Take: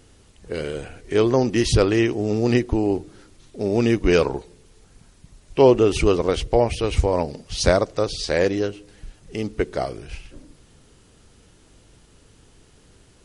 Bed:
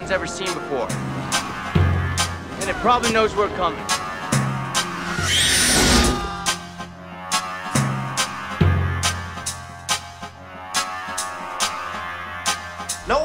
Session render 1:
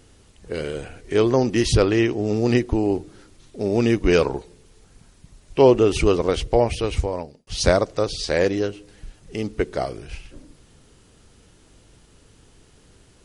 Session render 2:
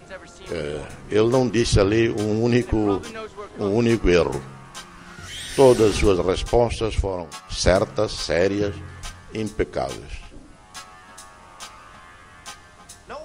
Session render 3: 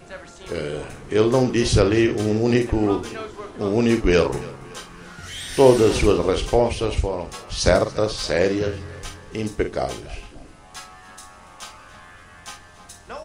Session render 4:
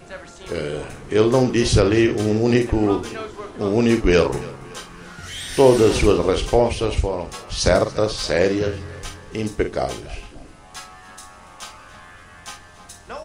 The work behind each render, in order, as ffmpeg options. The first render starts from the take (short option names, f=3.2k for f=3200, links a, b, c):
-filter_complex "[0:a]asettb=1/sr,asplit=3[a][b][c];[a]atrim=end=1.774[d];[b]atrim=start=1.77:end=2.26,asetpts=PTS-STARTPTS,afade=t=in:d=0.004:c=qsin,afade=t=out:st=0.486:d=0.004:c=qsin,lowpass=6.9k[e];[c]atrim=start=2.256[f];[d][e]acrossfade=d=0.004:c1=hsin:c2=qsin[g];[g][f]acrossfade=d=0.004:c1=qsin:c2=hsin,asplit=2[h][i];[h]atrim=end=7.47,asetpts=PTS-STARTPTS,afade=t=out:st=6.78:d=0.69[j];[i]atrim=start=7.47,asetpts=PTS-STARTPTS,afade=t=in:d=0.004:c=hsin[k];[j][k]concat=n=2:v=0:a=1"
-filter_complex "[1:a]volume=-16.5dB[a];[0:a][a]amix=inputs=2:normalize=0"
-filter_complex "[0:a]asplit=2[a][b];[b]adelay=47,volume=-8.5dB[c];[a][c]amix=inputs=2:normalize=0,aecho=1:1:284|568|852|1136:0.1|0.048|0.023|0.0111"
-af "volume=1.5dB,alimiter=limit=-3dB:level=0:latency=1"